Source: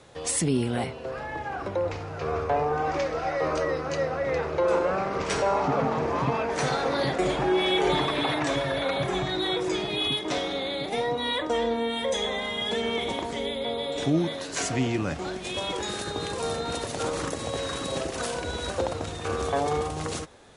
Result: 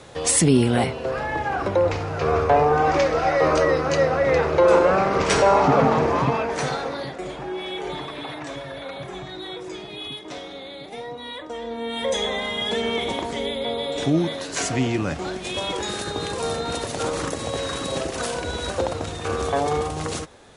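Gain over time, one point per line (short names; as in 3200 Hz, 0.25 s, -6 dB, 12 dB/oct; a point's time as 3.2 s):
5.93 s +8 dB
6.76 s 0 dB
7.14 s -7 dB
11.61 s -7 dB
12.07 s +3.5 dB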